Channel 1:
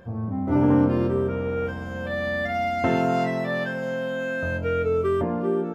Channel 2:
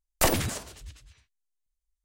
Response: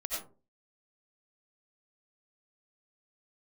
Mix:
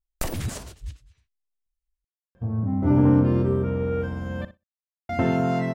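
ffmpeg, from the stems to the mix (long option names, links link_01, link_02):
-filter_complex "[0:a]adelay=2350,volume=-3.5dB,asplit=3[link_01][link_02][link_03];[link_01]atrim=end=4.45,asetpts=PTS-STARTPTS,afade=type=out:start_time=4.446:duration=0.004:curve=hsin[link_04];[link_02]atrim=start=4.45:end=5.09,asetpts=PTS-STARTPTS,volume=0[link_05];[link_03]atrim=start=5.09,asetpts=PTS-STARTPTS,afade=type=in:duration=0.004:curve=hsin[link_06];[link_04][link_05][link_06]concat=n=3:v=0:a=1,asplit=2[link_07][link_08];[link_08]volume=-14dB[link_09];[1:a]acompressor=threshold=-30dB:ratio=8,volume=0.5dB[link_10];[link_09]aecho=0:1:62|124|186:1|0.21|0.0441[link_11];[link_07][link_10][link_11]amix=inputs=3:normalize=0,agate=range=-10dB:threshold=-45dB:ratio=16:detection=peak,lowshelf=frequency=240:gain=9.5"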